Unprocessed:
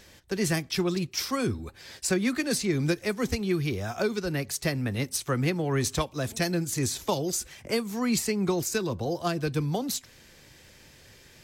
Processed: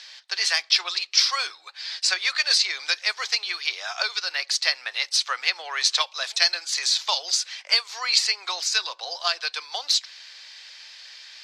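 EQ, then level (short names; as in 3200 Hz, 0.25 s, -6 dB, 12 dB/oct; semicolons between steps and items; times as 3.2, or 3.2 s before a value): Bessel high-pass 1200 Hz, order 6; synth low-pass 4500 Hz, resonance Q 2.9; +8.0 dB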